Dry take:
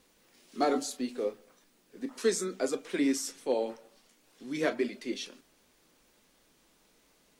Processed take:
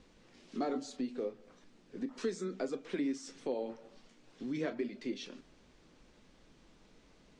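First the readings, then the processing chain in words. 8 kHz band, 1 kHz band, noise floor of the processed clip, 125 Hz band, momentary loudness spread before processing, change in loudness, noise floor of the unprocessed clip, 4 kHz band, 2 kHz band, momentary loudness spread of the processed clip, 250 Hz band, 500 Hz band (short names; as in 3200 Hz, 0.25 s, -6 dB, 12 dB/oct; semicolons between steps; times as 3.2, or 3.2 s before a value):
-14.5 dB, -9.0 dB, -64 dBFS, -0.5 dB, 13 LU, -6.5 dB, -67 dBFS, -9.0 dB, -9.0 dB, 11 LU, -4.5 dB, -7.0 dB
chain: Bessel low-pass 5100 Hz, order 8; low shelf 250 Hz +11 dB; compressor 2.5:1, threshold -39 dBFS, peak gain reduction 13.5 dB; gain +1 dB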